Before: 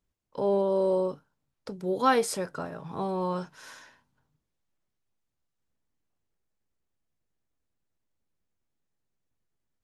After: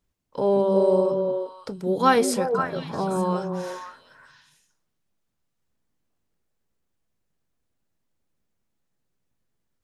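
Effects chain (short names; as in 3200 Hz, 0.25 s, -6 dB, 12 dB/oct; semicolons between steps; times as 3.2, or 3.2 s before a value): delay with a stepping band-pass 0.175 s, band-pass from 190 Hz, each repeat 1.4 oct, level -0.5 dB; gain +4.5 dB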